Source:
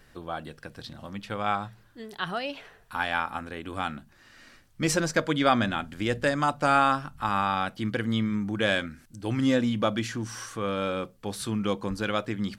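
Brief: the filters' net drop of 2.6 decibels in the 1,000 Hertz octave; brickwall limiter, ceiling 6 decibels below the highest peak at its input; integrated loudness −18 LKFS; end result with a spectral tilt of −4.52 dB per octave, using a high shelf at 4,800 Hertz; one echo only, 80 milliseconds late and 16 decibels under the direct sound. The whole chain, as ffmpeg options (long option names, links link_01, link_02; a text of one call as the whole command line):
ffmpeg -i in.wav -af "equalizer=frequency=1000:width_type=o:gain=-4,highshelf=frequency=4800:gain=5,alimiter=limit=-15.5dB:level=0:latency=1,aecho=1:1:80:0.158,volume=12dB" out.wav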